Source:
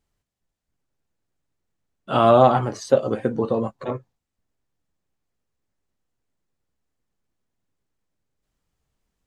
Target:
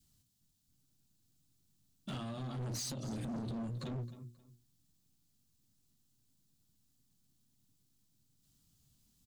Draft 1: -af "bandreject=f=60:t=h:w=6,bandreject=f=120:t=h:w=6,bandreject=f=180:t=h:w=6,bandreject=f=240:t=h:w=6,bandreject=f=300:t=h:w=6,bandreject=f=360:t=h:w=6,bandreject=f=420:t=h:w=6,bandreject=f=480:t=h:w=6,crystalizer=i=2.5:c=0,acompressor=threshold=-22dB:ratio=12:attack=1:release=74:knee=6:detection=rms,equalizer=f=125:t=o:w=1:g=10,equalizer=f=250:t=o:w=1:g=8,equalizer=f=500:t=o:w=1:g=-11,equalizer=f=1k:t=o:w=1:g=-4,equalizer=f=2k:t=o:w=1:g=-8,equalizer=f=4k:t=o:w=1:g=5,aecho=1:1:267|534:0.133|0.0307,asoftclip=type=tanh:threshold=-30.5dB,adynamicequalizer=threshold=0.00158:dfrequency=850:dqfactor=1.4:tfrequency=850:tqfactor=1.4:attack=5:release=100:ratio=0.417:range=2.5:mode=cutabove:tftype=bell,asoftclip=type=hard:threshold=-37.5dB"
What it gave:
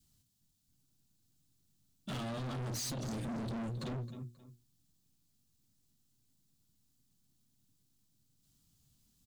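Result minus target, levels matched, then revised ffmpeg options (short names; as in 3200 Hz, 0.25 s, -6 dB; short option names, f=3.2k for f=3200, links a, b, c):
compressor: peak gain reduction -8.5 dB
-af "bandreject=f=60:t=h:w=6,bandreject=f=120:t=h:w=6,bandreject=f=180:t=h:w=6,bandreject=f=240:t=h:w=6,bandreject=f=300:t=h:w=6,bandreject=f=360:t=h:w=6,bandreject=f=420:t=h:w=6,bandreject=f=480:t=h:w=6,crystalizer=i=2.5:c=0,acompressor=threshold=-31.5dB:ratio=12:attack=1:release=74:knee=6:detection=rms,equalizer=f=125:t=o:w=1:g=10,equalizer=f=250:t=o:w=1:g=8,equalizer=f=500:t=o:w=1:g=-11,equalizer=f=1k:t=o:w=1:g=-4,equalizer=f=2k:t=o:w=1:g=-8,equalizer=f=4k:t=o:w=1:g=5,aecho=1:1:267|534:0.133|0.0307,asoftclip=type=tanh:threshold=-30.5dB,adynamicequalizer=threshold=0.00158:dfrequency=850:dqfactor=1.4:tfrequency=850:tqfactor=1.4:attack=5:release=100:ratio=0.417:range=2.5:mode=cutabove:tftype=bell,asoftclip=type=hard:threshold=-37.5dB"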